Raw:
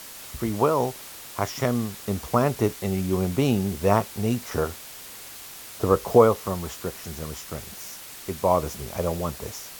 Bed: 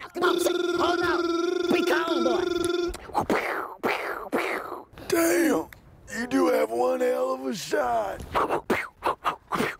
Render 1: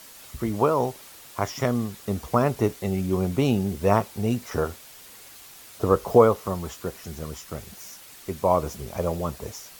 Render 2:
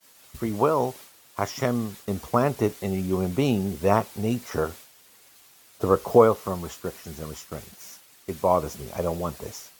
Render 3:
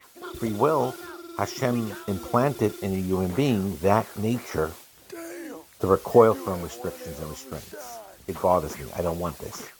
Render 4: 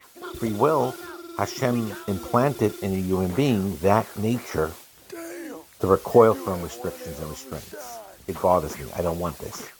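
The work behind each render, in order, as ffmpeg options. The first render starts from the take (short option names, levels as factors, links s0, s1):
-af "afftdn=nr=6:nf=-42"
-af "lowshelf=f=62:g=-10.5,agate=range=0.0224:threshold=0.0112:ratio=3:detection=peak"
-filter_complex "[1:a]volume=0.158[s0];[0:a][s0]amix=inputs=2:normalize=0"
-af "volume=1.19,alimiter=limit=0.708:level=0:latency=1"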